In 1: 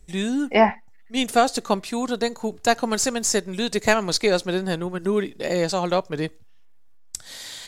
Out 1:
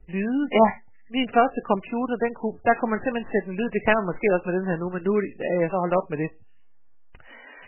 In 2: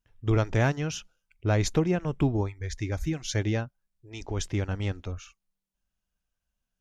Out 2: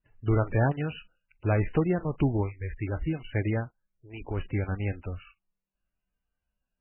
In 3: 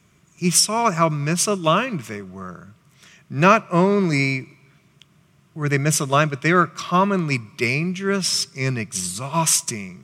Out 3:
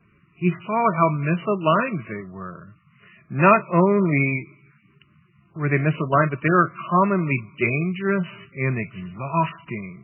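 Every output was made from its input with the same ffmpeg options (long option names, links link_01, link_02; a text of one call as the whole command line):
ffmpeg -i in.wav -af "adynamicequalizer=threshold=0.00891:dfrequency=3700:dqfactor=2.1:tfrequency=3700:tqfactor=2.1:attack=5:release=100:ratio=0.375:range=2:mode=cutabove:tftype=bell" -ar 12000 -c:a libmp3lame -b:a 8k out.mp3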